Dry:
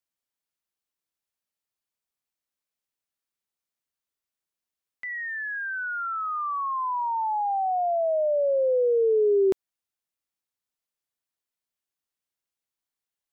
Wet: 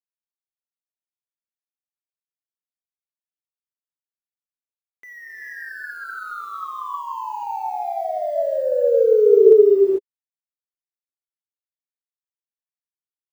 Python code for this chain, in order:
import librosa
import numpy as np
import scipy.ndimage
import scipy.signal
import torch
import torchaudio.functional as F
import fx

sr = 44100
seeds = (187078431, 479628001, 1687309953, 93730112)

y = fx.delta_hold(x, sr, step_db=-43.5)
y = scipy.signal.sosfilt(scipy.signal.butter(2, 42.0, 'highpass', fs=sr, output='sos'), y)
y = fx.peak_eq(y, sr, hz=410.0, db=14.0, octaves=0.76)
y = fx.rev_gated(y, sr, seeds[0], gate_ms=470, shape='rising', drr_db=-3.5)
y = y * librosa.db_to_amplitude(-8.0)